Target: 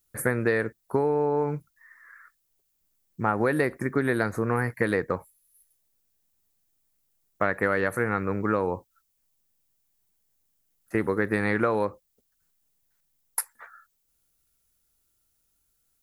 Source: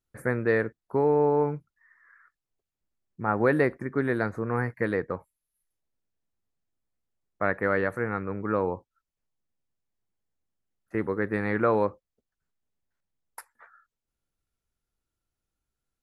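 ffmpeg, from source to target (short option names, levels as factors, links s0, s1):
-af "acompressor=threshold=0.0562:ratio=10,aemphasis=mode=production:type=75kf,volume=1.78"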